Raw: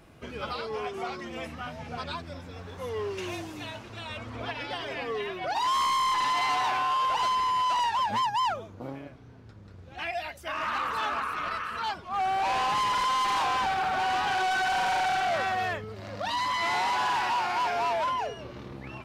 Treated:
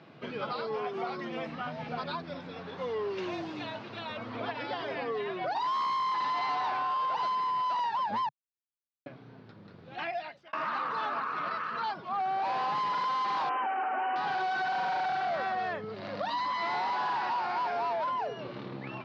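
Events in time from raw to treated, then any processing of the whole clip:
0:08.29–0:09.06: silence
0:10.04–0:10.53: fade out
0:13.49–0:14.16: linear-phase brick-wall band-pass 220–3,100 Hz
whole clip: elliptic band-pass filter 140–4,400 Hz, stop band 50 dB; dynamic equaliser 2,900 Hz, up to −7 dB, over −47 dBFS, Q 1.2; downward compressor 3 to 1, threshold −33 dBFS; level +2.5 dB

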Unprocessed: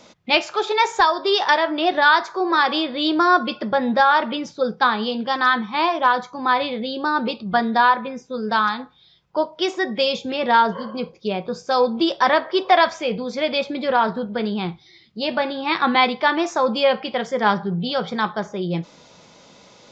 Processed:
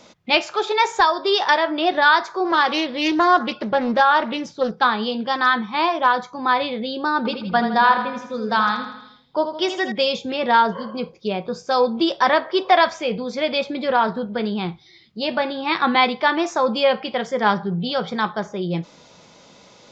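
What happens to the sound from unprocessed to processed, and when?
0:02.45–0:04.85: highs frequency-modulated by the lows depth 0.34 ms
0:07.17–0:09.92: repeating echo 81 ms, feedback 53%, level −8.5 dB

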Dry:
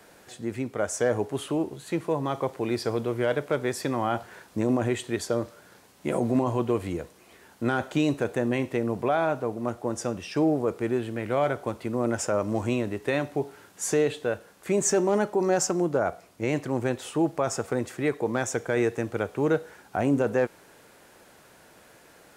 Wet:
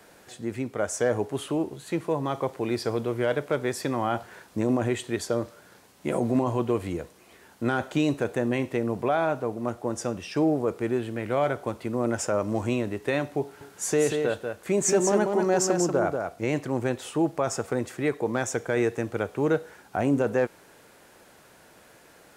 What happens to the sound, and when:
0:13.42–0:16.46: single-tap delay 189 ms −5 dB

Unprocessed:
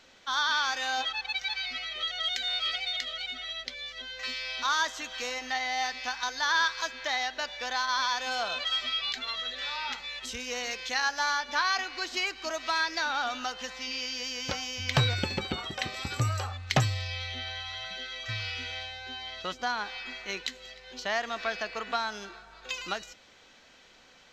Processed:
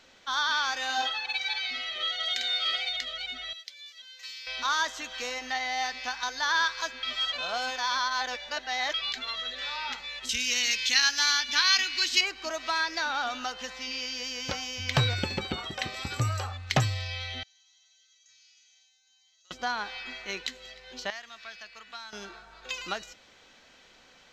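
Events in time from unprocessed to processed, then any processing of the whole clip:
0:00.85–0:02.89: double-tracking delay 49 ms −3.5 dB
0:03.53–0:04.47: first difference
0:07.03–0:08.94: reverse
0:10.29–0:12.21: drawn EQ curve 280 Hz 0 dB, 650 Hz −13 dB, 2,700 Hz +10 dB
0:17.43–0:19.51: resonant band-pass 6,600 Hz, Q 12
0:21.10–0:22.13: guitar amp tone stack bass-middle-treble 5-5-5

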